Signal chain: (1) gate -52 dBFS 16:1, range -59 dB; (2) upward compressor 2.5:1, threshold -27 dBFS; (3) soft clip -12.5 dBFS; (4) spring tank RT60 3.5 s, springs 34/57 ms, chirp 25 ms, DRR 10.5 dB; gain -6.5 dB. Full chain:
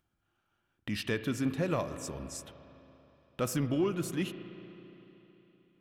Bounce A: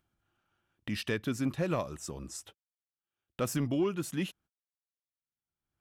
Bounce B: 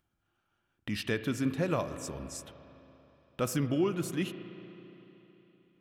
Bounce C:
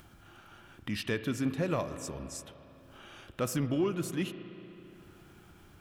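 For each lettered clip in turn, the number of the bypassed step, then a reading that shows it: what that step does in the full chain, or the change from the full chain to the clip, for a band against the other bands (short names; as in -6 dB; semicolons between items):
4, momentary loudness spread change -6 LU; 3, distortion -24 dB; 1, momentary loudness spread change +1 LU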